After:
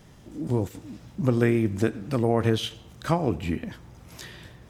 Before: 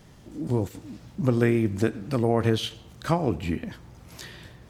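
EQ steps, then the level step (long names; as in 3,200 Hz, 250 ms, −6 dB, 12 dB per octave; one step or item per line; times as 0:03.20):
notch filter 4,400 Hz, Q 19
0.0 dB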